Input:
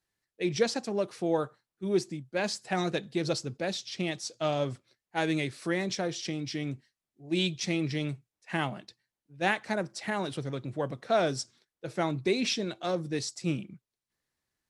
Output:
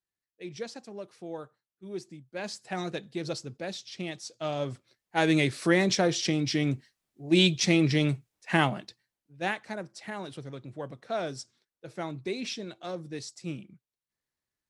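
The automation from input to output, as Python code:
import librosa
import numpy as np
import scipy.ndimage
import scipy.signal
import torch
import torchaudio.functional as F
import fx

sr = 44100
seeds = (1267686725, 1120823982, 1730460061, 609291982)

y = fx.gain(x, sr, db=fx.line((1.89, -11.0), (2.63, -4.0), (4.39, -4.0), (5.48, 7.0), (8.59, 7.0), (9.73, -6.0)))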